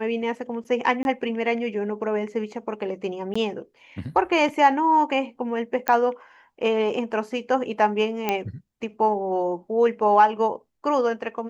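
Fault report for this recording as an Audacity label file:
1.030000	1.050000	gap 21 ms
3.340000	3.350000	gap 15 ms
5.880000	5.880000	pop -9 dBFS
8.290000	8.290000	pop -9 dBFS

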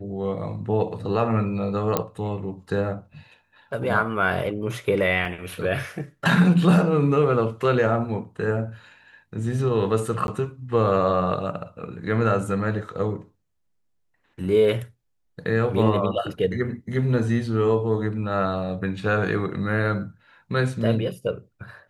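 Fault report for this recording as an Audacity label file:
1.970000	1.970000	pop -7 dBFS
5.250000	5.250000	gap 2.5 ms
10.270000	10.280000	gap 11 ms

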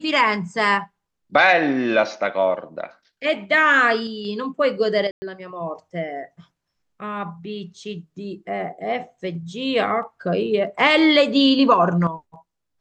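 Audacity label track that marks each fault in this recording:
5.110000	5.220000	gap 0.11 s

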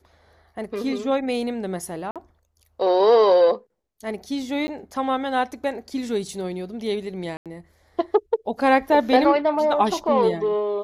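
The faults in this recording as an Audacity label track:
2.110000	2.160000	gap 47 ms
4.670000	4.680000	gap 10 ms
7.370000	7.460000	gap 87 ms

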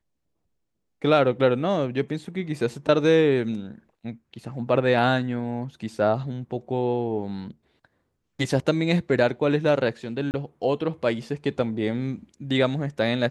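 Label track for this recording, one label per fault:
10.310000	10.340000	gap 29 ms

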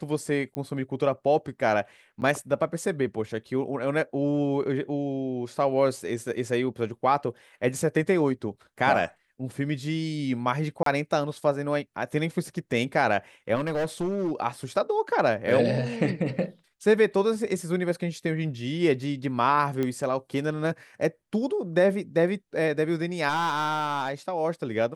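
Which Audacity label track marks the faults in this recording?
0.550000	0.550000	pop -20 dBFS
2.210000	2.220000	gap 9.4 ms
10.830000	10.860000	gap 33 ms
13.550000	14.320000	clipped -23.5 dBFS
19.830000	19.830000	pop -16 dBFS
23.280000	24.120000	clipped -21.5 dBFS

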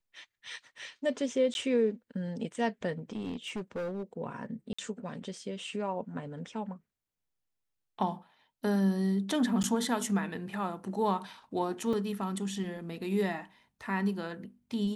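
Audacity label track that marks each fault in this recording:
1.540000	1.550000	gap 11 ms
2.980000	4.030000	clipped -32 dBFS
4.730000	4.790000	gap 55 ms
9.630000	9.640000	gap 9.6 ms
11.930000	11.930000	gap 3.6 ms

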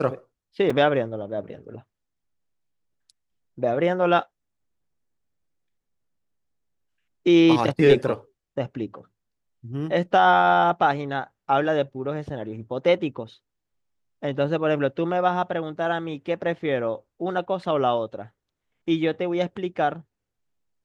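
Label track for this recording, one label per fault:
0.700000	0.700000	gap 4.1 ms

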